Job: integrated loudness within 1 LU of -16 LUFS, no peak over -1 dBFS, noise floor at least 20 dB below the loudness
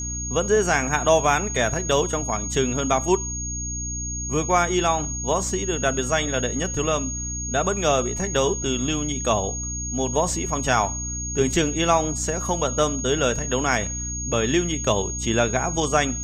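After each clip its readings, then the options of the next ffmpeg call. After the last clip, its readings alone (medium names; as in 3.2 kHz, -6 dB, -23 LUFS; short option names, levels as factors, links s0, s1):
hum 60 Hz; highest harmonic 300 Hz; hum level -30 dBFS; steady tone 6.6 kHz; tone level -29 dBFS; loudness -22.5 LUFS; peak level -4.5 dBFS; loudness target -16.0 LUFS
-> -af "bandreject=f=60:t=h:w=4,bandreject=f=120:t=h:w=4,bandreject=f=180:t=h:w=4,bandreject=f=240:t=h:w=4,bandreject=f=300:t=h:w=4"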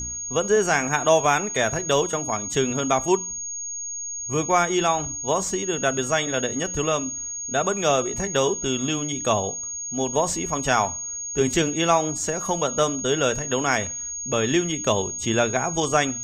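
hum not found; steady tone 6.6 kHz; tone level -29 dBFS
-> -af "bandreject=f=6600:w=30"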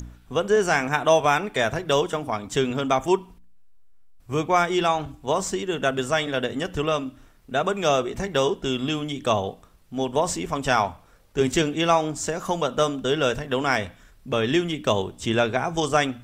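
steady tone not found; loudness -24.0 LUFS; peak level -4.5 dBFS; loudness target -16.0 LUFS
-> -af "volume=2.51,alimiter=limit=0.891:level=0:latency=1"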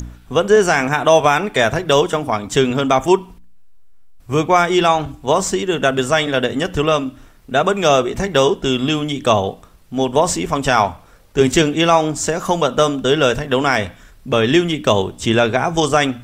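loudness -16.5 LUFS; peak level -1.0 dBFS; noise floor -45 dBFS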